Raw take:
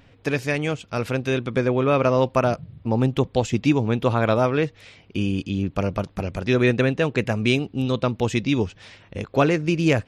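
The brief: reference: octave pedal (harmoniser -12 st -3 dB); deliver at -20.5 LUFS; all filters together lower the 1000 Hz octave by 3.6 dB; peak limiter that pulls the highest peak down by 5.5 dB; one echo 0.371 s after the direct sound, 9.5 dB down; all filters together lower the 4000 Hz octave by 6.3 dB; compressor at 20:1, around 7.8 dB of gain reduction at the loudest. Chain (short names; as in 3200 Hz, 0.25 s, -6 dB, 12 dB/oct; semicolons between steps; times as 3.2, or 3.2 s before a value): bell 1000 Hz -4.5 dB; bell 4000 Hz -8.5 dB; compressor 20:1, threshold -22 dBFS; limiter -18.5 dBFS; echo 0.371 s -9.5 dB; harmoniser -12 st -3 dB; gain +8 dB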